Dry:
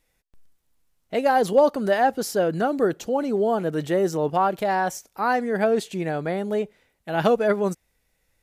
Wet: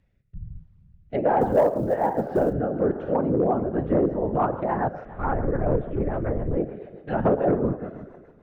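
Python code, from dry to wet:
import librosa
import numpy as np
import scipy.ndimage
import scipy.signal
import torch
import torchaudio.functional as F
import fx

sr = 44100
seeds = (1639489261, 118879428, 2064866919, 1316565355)

p1 = scipy.signal.sosfilt(scipy.signal.butter(2, 2400.0, 'lowpass', fs=sr, output='sos'), x)
p2 = fx.low_shelf(p1, sr, hz=97.0, db=12.0)
p3 = fx.rev_plate(p2, sr, seeds[0], rt60_s=1.8, hf_ratio=0.8, predelay_ms=0, drr_db=9.0)
p4 = fx.whisperise(p3, sr, seeds[1])
p5 = fx.lpc_monotone(p4, sr, seeds[2], pitch_hz=280.0, order=8, at=(5.05, 6.57))
p6 = fx.rotary_switch(p5, sr, hz=1.2, then_hz=7.0, switch_at_s=3.16)
p7 = 10.0 ** (-15.5 / 20.0) * (np.abs((p6 / 10.0 ** (-15.5 / 20.0) + 3.0) % 4.0 - 2.0) - 1.0)
p8 = p6 + (p7 * 10.0 ** (-4.0 / 20.0))
p9 = fx.env_lowpass_down(p8, sr, base_hz=1200.0, full_db=-18.0)
p10 = p9 + fx.echo_single(p9, sr, ms=129, db=-24.0, dry=0)
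p11 = fx.quant_companded(p10, sr, bits=8, at=(1.41, 2.53))
p12 = fx.record_warp(p11, sr, rpm=45.0, depth_cents=100.0)
y = p12 * 10.0 ** (-3.5 / 20.0)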